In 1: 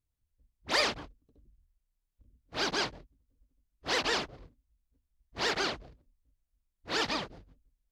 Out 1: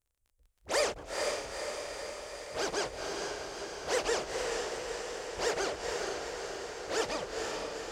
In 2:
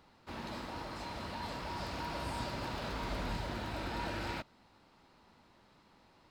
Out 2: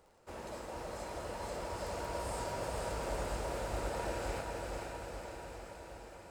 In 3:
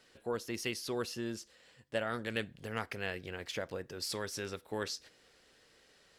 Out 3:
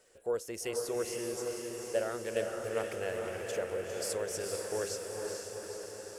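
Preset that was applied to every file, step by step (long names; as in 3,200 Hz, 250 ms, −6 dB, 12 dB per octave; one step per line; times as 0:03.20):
graphic EQ with 10 bands 125 Hz −5 dB, 250 Hz −9 dB, 500 Hz +8 dB, 1,000 Hz −4 dB, 2,000 Hz −3 dB, 4,000 Hz −11 dB, 8,000 Hz +9 dB
surface crackle 31 per second −54 dBFS
feedback delay with all-pass diffusion 466 ms, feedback 68%, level −3 dB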